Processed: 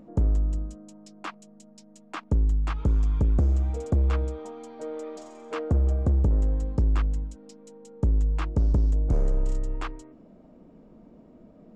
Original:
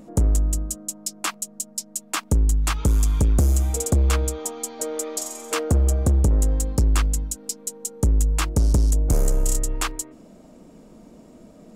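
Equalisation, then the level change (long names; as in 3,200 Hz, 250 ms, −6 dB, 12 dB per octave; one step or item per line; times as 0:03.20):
head-to-tape spacing loss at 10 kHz 32 dB
−3.5 dB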